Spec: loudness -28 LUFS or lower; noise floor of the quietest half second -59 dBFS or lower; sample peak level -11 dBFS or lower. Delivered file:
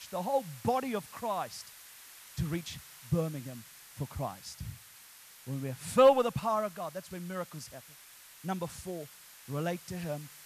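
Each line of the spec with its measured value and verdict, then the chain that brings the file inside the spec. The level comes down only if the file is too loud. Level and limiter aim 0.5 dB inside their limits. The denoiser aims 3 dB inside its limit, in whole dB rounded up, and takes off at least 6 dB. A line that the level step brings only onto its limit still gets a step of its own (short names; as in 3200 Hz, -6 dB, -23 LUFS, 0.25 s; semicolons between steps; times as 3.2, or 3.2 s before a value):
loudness -33.0 LUFS: OK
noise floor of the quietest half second -54 dBFS: fail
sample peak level -12.0 dBFS: OK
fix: denoiser 8 dB, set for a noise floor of -54 dBFS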